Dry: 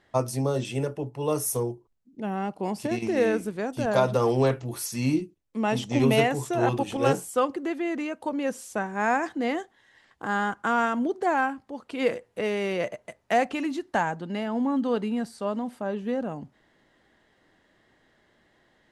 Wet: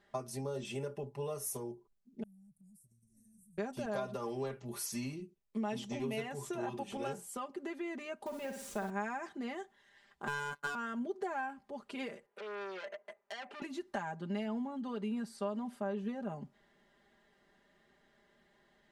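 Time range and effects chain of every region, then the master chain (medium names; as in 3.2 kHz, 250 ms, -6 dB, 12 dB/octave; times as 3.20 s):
2.23–3.58 s: elliptic band-stop 120–9100 Hz, stop band 50 dB + compression 10:1, threshold -55 dBFS
8.26–8.90 s: send-on-delta sampling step -41 dBFS + flutter echo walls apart 9.8 m, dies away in 0.47 s
10.27–10.75 s: treble shelf 7.2 kHz +11.5 dB + waveshaping leveller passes 3 + robot voice 144 Hz
12.26–13.62 s: three-band isolator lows -22 dB, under 300 Hz, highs -13 dB, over 2.3 kHz + compression 4:1, threshold -31 dBFS + transformer saturation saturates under 3.5 kHz
whole clip: compression, threshold -30 dBFS; comb 5 ms, depth 81%; trim -7.5 dB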